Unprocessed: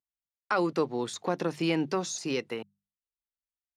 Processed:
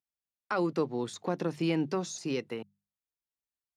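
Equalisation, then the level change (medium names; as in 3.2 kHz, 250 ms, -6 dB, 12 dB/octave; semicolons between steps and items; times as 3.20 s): high-pass 52 Hz; bass shelf 360 Hz +7 dB; -5.0 dB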